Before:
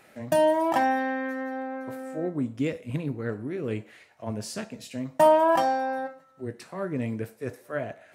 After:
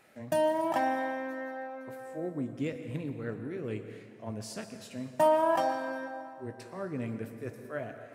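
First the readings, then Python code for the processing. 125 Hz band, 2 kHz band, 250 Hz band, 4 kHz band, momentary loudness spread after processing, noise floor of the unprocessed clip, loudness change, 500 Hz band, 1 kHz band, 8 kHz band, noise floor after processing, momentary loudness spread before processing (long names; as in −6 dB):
−5.5 dB, −5.5 dB, −6.0 dB, −5.5 dB, 15 LU, −58 dBFS, −6.0 dB, −5.5 dB, −6.0 dB, −5.5 dB, −51 dBFS, 15 LU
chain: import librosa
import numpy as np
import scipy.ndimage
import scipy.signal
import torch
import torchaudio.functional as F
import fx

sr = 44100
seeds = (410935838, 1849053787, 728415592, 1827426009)

y = fx.rev_plate(x, sr, seeds[0], rt60_s=2.1, hf_ratio=0.7, predelay_ms=105, drr_db=8.5)
y = F.gain(torch.from_numpy(y), -6.0).numpy()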